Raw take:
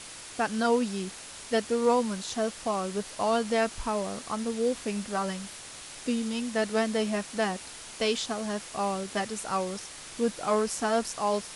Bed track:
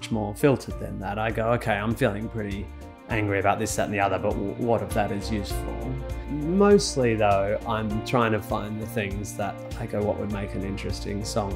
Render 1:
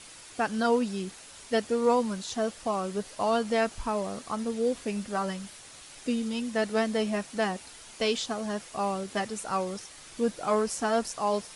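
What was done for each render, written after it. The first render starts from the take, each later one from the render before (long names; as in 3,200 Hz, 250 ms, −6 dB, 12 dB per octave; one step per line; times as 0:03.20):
broadband denoise 6 dB, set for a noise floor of −44 dBFS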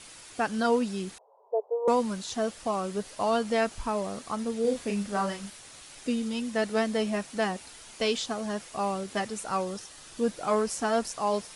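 0:01.18–0:01.88: Chebyshev band-pass filter 420–1,000 Hz, order 4
0:04.61–0:05.50: double-tracking delay 35 ms −5 dB
0:09.62–0:10.26: notch filter 2,200 Hz, Q 7.8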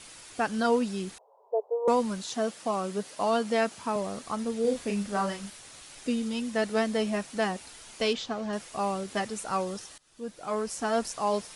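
0:02.26–0:03.96: high-pass filter 130 Hz 24 dB per octave
0:08.13–0:08.53: high-frequency loss of the air 110 metres
0:09.98–0:11.05: fade in, from −23.5 dB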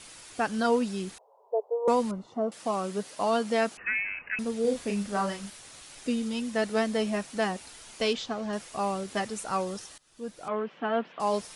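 0:02.11–0:02.52: Savitzky-Golay smoothing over 65 samples
0:03.77–0:04.39: voice inversion scrambler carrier 2,800 Hz
0:10.48–0:11.20: Chebyshev band-pass filter 150–3,200 Hz, order 4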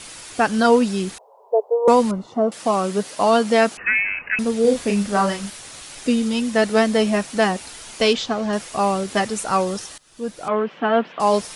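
level +10 dB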